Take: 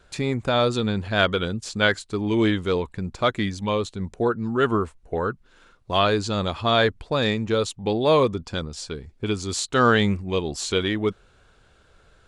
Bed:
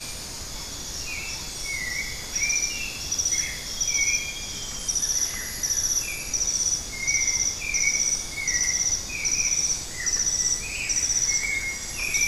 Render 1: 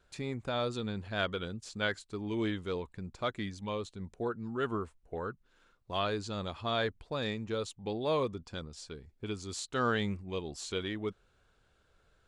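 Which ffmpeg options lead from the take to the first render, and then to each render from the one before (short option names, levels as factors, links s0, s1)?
-af "volume=0.237"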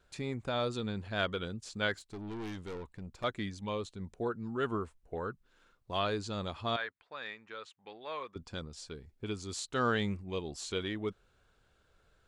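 -filter_complex "[0:a]asettb=1/sr,asplit=3[s0][s1][s2];[s0]atrim=end=1.944[s3];[s1]atrim=start=1.94:end=3.24,asetpts=PTS-STARTPTS,afade=t=in:d=0.004:c=qsin,afade=t=out:st=1.296:d=0.004:c=qsin,aeval=exprs='(tanh(79.4*val(0)+0.4)-tanh(0.4))/79.4':c=same[s4];[s2]atrim=start=3.236[s5];[s3][s4]acrossfade=d=0.004:c1=hsin:c2=qsin[s6];[s6][s5]acrossfade=d=0.004:c1=qsin:c2=hsin,asettb=1/sr,asplit=3[s7][s8][s9];[s7]atrim=end=6.764[s10];[s8]atrim=start=6.76:end=8.36,asetpts=PTS-STARTPTS,afade=t=in:d=0.004:c=qsin,afade=t=out:st=1.596:d=0.004:c=qsin,bandpass=f=1700:t=q:w=1.4[s11];[s9]atrim=start=8.356[s12];[s10][s11]acrossfade=d=0.004:c1=hsin:c2=qsin[s13];[s13][s12]acrossfade=d=0.004:c1=qsin:c2=hsin"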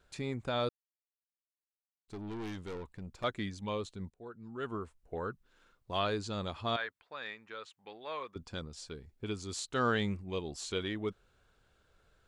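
-filter_complex "[0:a]asplit=4[s0][s1][s2][s3];[s0]atrim=end=0.69,asetpts=PTS-STARTPTS,afade=t=out:st=0.686:d=0.004:c=hsin[s4];[s1]atrim=start=0.69:end=2.08,asetpts=PTS-STARTPTS,volume=0[s5];[s2]atrim=start=2.08:end=4.1,asetpts=PTS-STARTPTS,afade=t=in:d=0.004:c=hsin,afade=t=out:st=2.016:d=0.004:c=hsin:silence=0.0891251[s6];[s3]atrim=start=4.1,asetpts=PTS-STARTPTS,afade=t=in:d=1.13:silence=0.0891251[s7];[s4][s5][s6][s7]concat=n=4:v=0:a=1"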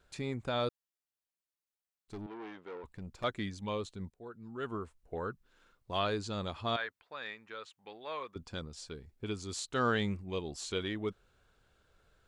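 -filter_complex "[0:a]asettb=1/sr,asplit=3[s0][s1][s2];[s0]atrim=end=2.264[s3];[s1]atrim=start=2.26:end=2.84,asetpts=PTS-STARTPTS,afade=t=in:d=0.004:c=qsin,afade=t=out:st=0.576:d=0.004:c=qsin,highpass=390,lowpass=2200[s4];[s2]atrim=start=2.836[s5];[s3][s4]acrossfade=d=0.004:c1=hsin:c2=qsin[s6];[s6][s5]acrossfade=d=0.004:c1=qsin:c2=hsin"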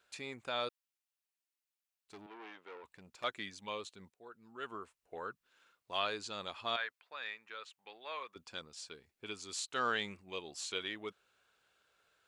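-af "highpass=f=930:p=1,equalizer=f=2600:t=o:w=0.38:g=3.5"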